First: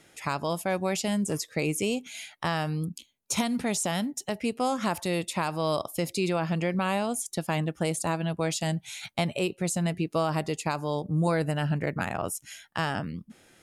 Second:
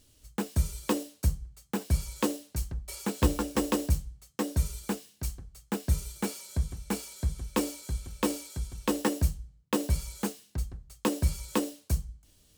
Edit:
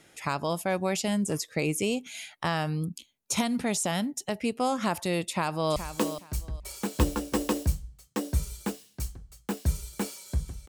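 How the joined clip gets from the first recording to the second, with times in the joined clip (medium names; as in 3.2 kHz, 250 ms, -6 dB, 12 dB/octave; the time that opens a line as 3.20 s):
first
5.25–5.76 s: echo throw 420 ms, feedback 20%, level -10.5 dB
5.76 s: go over to second from 1.99 s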